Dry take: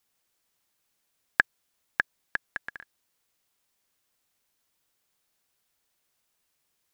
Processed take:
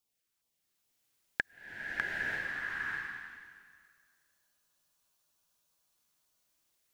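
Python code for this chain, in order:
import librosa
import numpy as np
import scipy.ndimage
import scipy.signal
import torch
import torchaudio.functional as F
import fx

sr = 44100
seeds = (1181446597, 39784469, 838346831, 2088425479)

y = fx.filter_lfo_notch(x, sr, shape='saw_down', hz=2.4, low_hz=420.0, high_hz=2000.0, q=1.1)
y = fx.spec_freeze(y, sr, seeds[0], at_s=2.09, hold_s=3.8)
y = fx.rev_bloom(y, sr, seeds[1], attack_ms=940, drr_db=-6.0)
y = F.gain(torch.from_numpy(y), -7.0).numpy()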